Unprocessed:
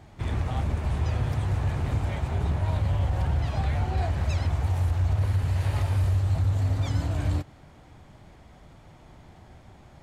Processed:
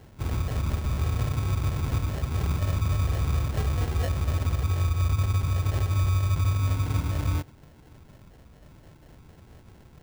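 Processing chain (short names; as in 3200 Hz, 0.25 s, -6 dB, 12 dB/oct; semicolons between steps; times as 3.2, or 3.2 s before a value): LFO notch saw down 4.2 Hz 420–1700 Hz; sample-rate reducer 1200 Hz, jitter 0%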